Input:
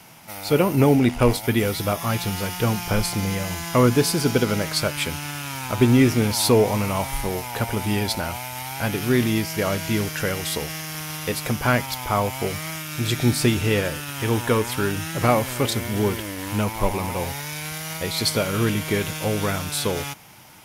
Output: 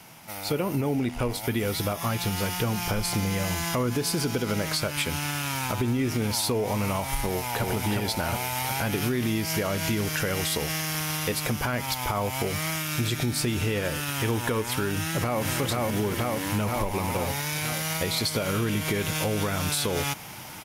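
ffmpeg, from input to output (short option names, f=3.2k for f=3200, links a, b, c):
-filter_complex "[0:a]asplit=2[a][b];[b]afade=t=in:st=7.24:d=0.01,afade=t=out:st=7.65:d=0.01,aecho=0:1:360|720|1080|1440|1800:0.841395|0.336558|0.134623|0.0538493|0.0215397[c];[a][c]amix=inputs=2:normalize=0,asplit=2[d][e];[e]afade=t=in:st=14.93:d=0.01,afade=t=out:st=15.42:d=0.01,aecho=0:1:480|960|1440|1920|2400|2880|3360|3840:0.944061|0.519233|0.285578|0.157068|0.0863875|0.0475131|0.0261322|0.0143727[f];[d][f]amix=inputs=2:normalize=0,dynaudnorm=f=710:g=5:m=11.5dB,alimiter=limit=-12dB:level=0:latency=1:release=149,acompressor=threshold=-23dB:ratio=2.5,volume=-1.5dB"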